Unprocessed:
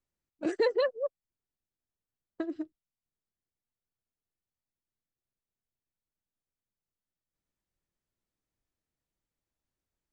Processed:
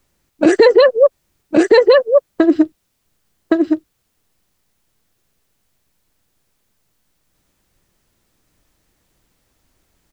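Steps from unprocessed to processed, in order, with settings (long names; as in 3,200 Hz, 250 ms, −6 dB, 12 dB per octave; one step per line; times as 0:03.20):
single-tap delay 1,116 ms −3.5 dB
boost into a limiter +25.5 dB
level −1 dB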